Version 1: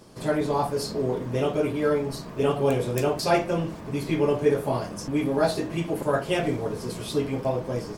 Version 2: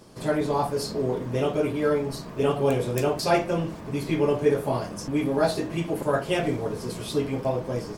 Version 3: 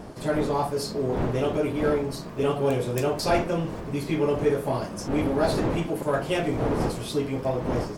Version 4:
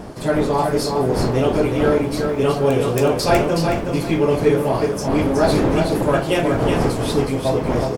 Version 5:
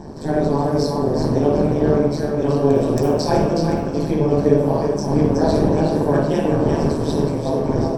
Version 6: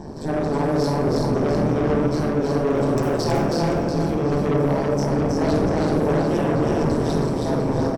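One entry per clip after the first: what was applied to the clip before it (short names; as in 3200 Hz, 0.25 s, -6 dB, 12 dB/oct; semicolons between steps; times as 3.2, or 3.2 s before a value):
nothing audible
wind noise 470 Hz -32 dBFS; in parallel at -8 dB: overloaded stage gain 23 dB; on the sum: gain -3 dB
feedback echo 0.37 s, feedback 26%, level -5 dB; gain +6.5 dB
AM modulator 150 Hz, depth 100%; reverb RT60 0.75 s, pre-delay 48 ms, DRR 1.5 dB; gain -9.5 dB
soft clip -17.5 dBFS, distortion -9 dB; echo 0.321 s -3 dB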